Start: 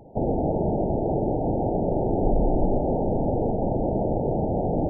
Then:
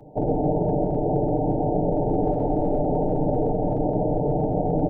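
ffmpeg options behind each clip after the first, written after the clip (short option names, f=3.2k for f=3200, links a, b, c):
-filter_complex "[0:a]acrossover=split=180|430[a][b][c];[a]aeval=exprs='0.0631*(abs(mod(val(0)/0.0631+3,4)-2)-1)':c=same[d];[d][b][c]amix=inputs=3:normalize=0,aecho=1:1:6.7:0.69"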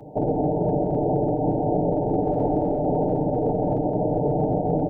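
-af "alimiter=limit=-18dB:level=0:latency=1:release=188,highpass=f=69:p=1,volume=5dB"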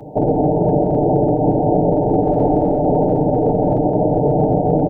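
-af "aecho=1:1:270|540|810|1080|1350:0.141|0.0777|0.0427|0.0235|0.0129,volume=7dB"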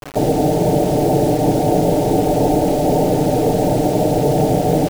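-af "acrusher=bits=4:mix=0:aa=0.000001"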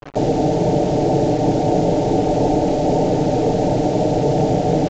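-af "aresample=16000,aresample=44100,anlmdn=15.8,volume=-1.5dB"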